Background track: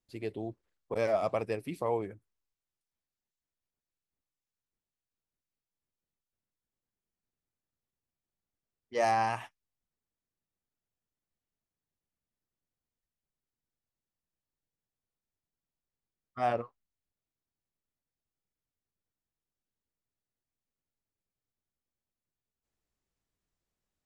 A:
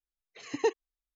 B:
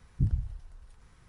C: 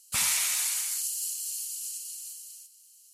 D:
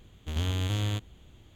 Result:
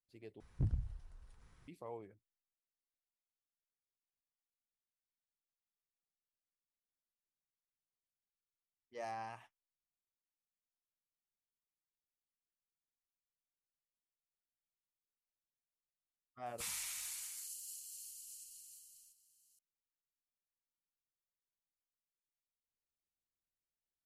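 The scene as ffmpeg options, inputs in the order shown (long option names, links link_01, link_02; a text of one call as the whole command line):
ffmpeg -i bed.wav -i cue0.wav -i cue1.wav -i cue2.wav -filter_complex "[0:a]volume=-16.5dB[link_01];[2:a]asoftclip=type=hard:threshold=-20.5dB[link_02];[3:a]asubboost=boost=12:cutoff=250[link_03];[link_01]asplit=2[link_04][link_05];[link_04]atrim=end=0.404[link_06];[link_02]atrim=end=1.28,asetpts=PTS-STARTPTS,volume=-7dB[link_07];[link_05]atrim=start=1.676[link_08];[link_03]atrim=end=3.13,asetpts=PTS-STARTPTS,volume=-16.5dB,afade=type=in:duration=0.004:curve=hsin,afade=type=out:start_time=3.126:duration=0.004:curve=hsin,adelay=16460[link_09];[link_06][link_07]acrossfade=duration=0.004:curve1=hsin:curve2=hsin[link_10];[link_10][link_08]acrossfade=duration=0.004:curve1=hsin:curve2=hsin[link_11];[link_11][link_09]amix=inputs=2:normalize=0" out.wav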